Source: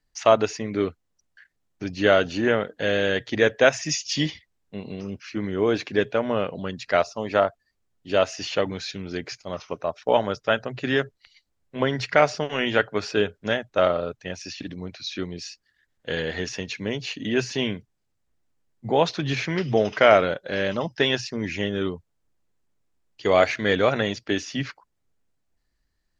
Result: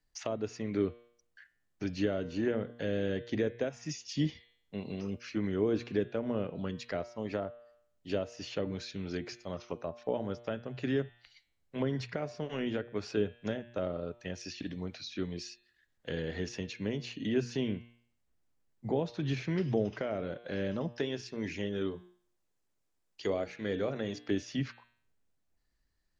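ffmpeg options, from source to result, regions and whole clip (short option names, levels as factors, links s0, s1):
-filter_complex "[0:a]asettb=1/sr,asplit=3[s0][s1][s2];[s0]atrim=end=20.964[s3];[s1]atrim=start=20.96:end=24.29,asetpts=PTS-STARTPTS,afade=t=in:d=0.004:c=qsin,afade=t=out:st=3.326:d=0.004:c=qsin,bass=f=250:g=-5,treble=f=4000:g=3,bandreject=f=60:t=h:w=6,bandreject=f=120:t=h:w=6,bandreject=f=180:t=h:w=6,bandreject=f=240:t=h:w=6,bandreject=f=300:t=h:w=6,bandreject=f=360:t=h:w=6,bandreject=f=420:t=h:w=6[s4];[s2]atrim=start=24.286[s5];[s3][s4]acrossfade=d=0.004:c1=hsin:c2=qsin[s6];[s6][s5]acrossfade=d=0.004:c1=qsin:c2=hsin,bandreject=f=118.5:t=h:w=4,bandreject=f=237:t=h:w=4,bandreject=f=355.5:t=h:w=4,bandreject=f=474:t=h:w=4,bandreject=f=592.5:t=h:w=4,bandreject=f=711:t=h:w=4,bandreject=f=829.5:t=h:w=4,bandreject=f=948:t=h:w=4,bandreject=f=1066.5:t=h:w=4,bandreject=f=1185:t=h:w=4,bandreject=f=1303.5:t=h:w=4,bandreject=f=1422:t=h:w=4,bandreject=f=1540.5:t=h:w=4,bandreject=f=1659:t=h:w=4,bandreject=f=1777.5:t=h:w=4,bandreject=f=1896:t=h:w=4,bandreject=f=2014.5:t=h:w=4,bandreject=f=2133:t=h:w=4,bandreject=f=2251.5:t=h:w=4,bandreject=f=2370:t=h:w=4,bandreject=f=2488.5:t=h:w=4,bandreject=f=2607:t=h:w=4,bandreject=f=2725.5:t=h:w=4,bandreject=f=2844:t=h:w=4,bandreject=f=2962.5:t=h:w=4,bandreject=f=3081:t=h:w=4,bandreject=f=3199.5:t=h:w=4,bandreject=f=3318:t=h:w=4,bandreject=f=3436.5:t=h:w=4,bandreject=f=3555:t=h:w=4,bandreject=f=3673.5:t=h:w=4,bandreject=f=3792:t=h:w=4,bandreject=f=3910.5:t=h:w=4,bandreject=f=4029:t=h:w=4,bandreject=f=4147.5:t=h:w=4,bandreject=f=4266:t=h:w=4,alimiter=limit=0.335:level=0:latency=1:release=485,acrossover=split=440[s7][s8];[s8]acompressor=threshold=0.0126:ratio=5[s9];[s7][s9]amix=inputs=2:normalize=0,volume=0.631"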